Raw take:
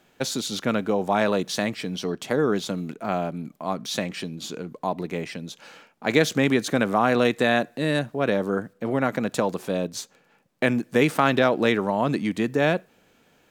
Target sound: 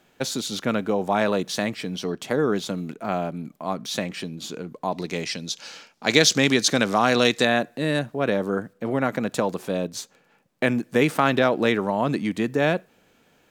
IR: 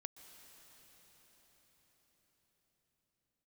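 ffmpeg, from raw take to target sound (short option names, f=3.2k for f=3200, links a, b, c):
-filter_complex "[0:a]asettb=1/sr,asplit=3[a][b][c];[a]atrim=end=4.924[d];[b]atrim=start=4.92:end=7.45,asetpts=PTS-STARTPTS,afade=t=in:d=0.004:c=qsin,afade=t=out:st=2.526:d=0.004:c=qsin,equalizer=f=5.2k:t=o:w=1.5:g=14[e];[c]atrim=start=7.446[f];[d][e]acrossfade=d=0.004:c1=hsin:c2=qsin[g];[g][f]acrossfade=d=0.004:c1=qsin:c2=hsin"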